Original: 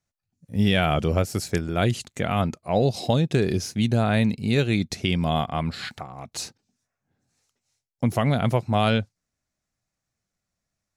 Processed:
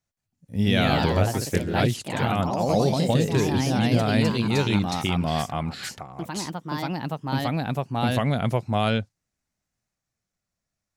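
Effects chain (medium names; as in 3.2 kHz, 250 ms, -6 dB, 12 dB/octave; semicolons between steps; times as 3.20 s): ever faster or slower copies 171 ms, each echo +2 st, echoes 3; trim -2 dB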